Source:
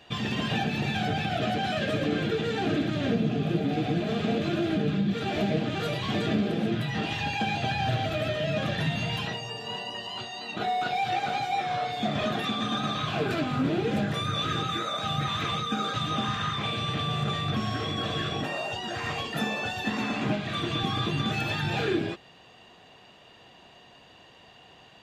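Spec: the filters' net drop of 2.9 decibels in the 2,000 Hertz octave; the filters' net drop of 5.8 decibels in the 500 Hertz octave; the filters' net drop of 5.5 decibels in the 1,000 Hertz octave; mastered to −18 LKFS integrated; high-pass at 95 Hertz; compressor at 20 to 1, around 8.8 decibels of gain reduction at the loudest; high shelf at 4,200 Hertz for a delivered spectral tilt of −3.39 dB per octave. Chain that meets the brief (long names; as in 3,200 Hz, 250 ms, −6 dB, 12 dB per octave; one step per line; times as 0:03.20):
high-pass filter 95 Hz
parametric band 500 Hz −6.5 dB
parametric band 1,000 Hz −4.5 dB
parametric band 2,000 Hz −3.5 dB
high-shelf EQ 4,200 Hz +4.5 dB
downward compressor 20 to 1, threshold −32 dBFS
level +17.5 dB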